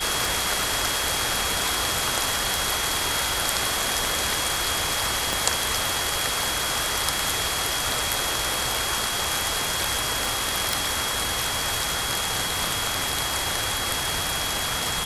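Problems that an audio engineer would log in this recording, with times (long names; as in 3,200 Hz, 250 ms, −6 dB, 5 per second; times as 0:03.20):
scratch tick 78 rpm
whistle 3,300 Hz −31 dBFS
0:05.33: click
0:10.73: click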